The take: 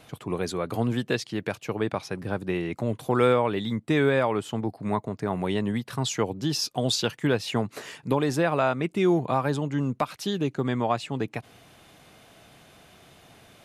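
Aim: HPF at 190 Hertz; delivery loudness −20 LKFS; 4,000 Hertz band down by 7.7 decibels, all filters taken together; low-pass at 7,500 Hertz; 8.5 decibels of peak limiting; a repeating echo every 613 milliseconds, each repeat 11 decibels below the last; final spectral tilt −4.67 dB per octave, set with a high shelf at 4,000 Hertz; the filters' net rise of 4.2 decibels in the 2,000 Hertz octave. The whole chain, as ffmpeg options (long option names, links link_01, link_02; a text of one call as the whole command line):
ffmpeg -i in.wav -af "highpass=190,lowpass=7500,equalizer=frequency=2000:width_type=o:gain=9,highshelf=frequency=4000:gain=-7,equalizer=frequency=4000:width_type=o:gain=-8.5,alimiter=limit=-17.5dB:level=0:latency=1,aecho=1:1:613|1226|1839:0.282|0.0789|0.0221,volume=10dB" out.wav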